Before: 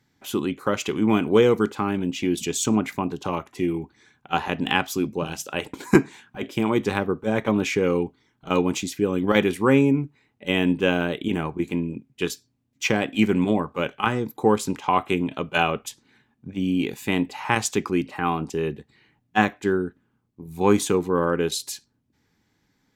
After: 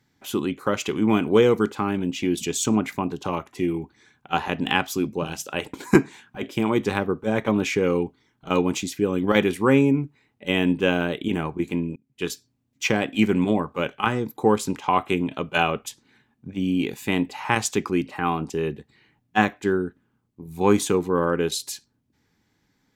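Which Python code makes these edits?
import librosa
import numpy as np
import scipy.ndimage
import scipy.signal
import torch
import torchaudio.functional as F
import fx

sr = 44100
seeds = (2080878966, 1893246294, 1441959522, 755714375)

y = fx.edit(x, sr, fx.fade_in_span(start_s=11.96, length_s=0.36), tone=tone)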